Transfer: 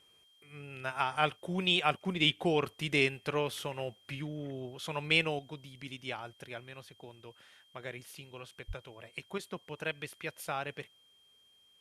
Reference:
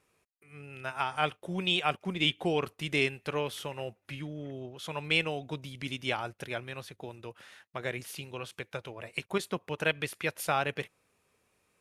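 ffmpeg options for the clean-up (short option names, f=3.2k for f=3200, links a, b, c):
-filter_complex "[0:a]bandreject=f=3.2k:w=30,asplit=3[a][b][c];[a]afade=t=out:st=8.67:d=0.02[d];[b]highpass=f=140:w=0.5412,highpass=f=140:w=1.3066,afade=t=in:st=8.67:d=0.02,afade=t=out:st=8.79:d=0.02[e];[c]afade=t=in:st=8.79:d=0.02[f];[d][e][f]amix=inputs=3:normalize=0,agate=range=-21dB:threshold=-58dB,asetnsamples=n=441:p=0,asendcmd='5.39 volume volume 7.5dB',volume=0dB"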